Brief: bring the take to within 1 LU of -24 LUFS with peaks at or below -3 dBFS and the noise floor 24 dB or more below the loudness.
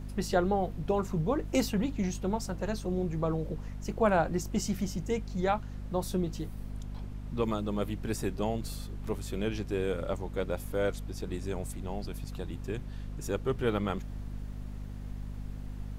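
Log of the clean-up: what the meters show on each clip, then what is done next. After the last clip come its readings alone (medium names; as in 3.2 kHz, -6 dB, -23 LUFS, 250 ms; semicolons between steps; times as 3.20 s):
hum 50 Hz; highest harmonic 250 Hz; hum level -37 dBFS; noise floor -41 dBFS; noise floor target -58 dBFS; loudness -33.5 LUFS; peak level -13.5 dBFS; loudness target -24.0 LUFS
-> hum notches 50/100/150/200/250 Hz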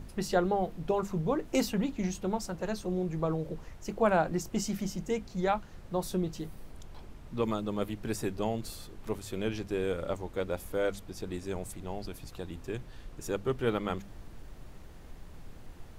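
hum not found; noise floor -49 dBFS; noise floor target -58 dBFS
-> noise print and reduce 9 dB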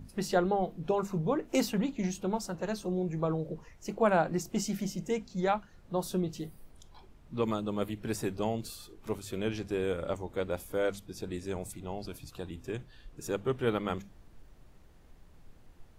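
noise floor -56 dBFS; noise floor target -58 dBFS
-> noise print and reduce 6 dB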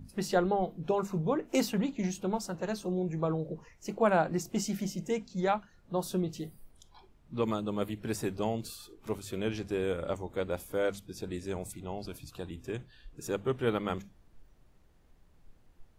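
noise floor -62 dBFS; loudness -33.5 LUFS; peak level -14.0 dBFS; loudness target -24.0 LUFS
-> trim +9.5 dB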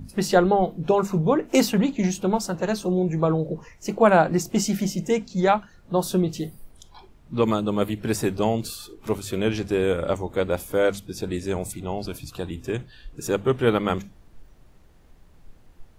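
loudness -24.0 LUFS; peak level -4.5 dBFS; noise floor -52 dBFS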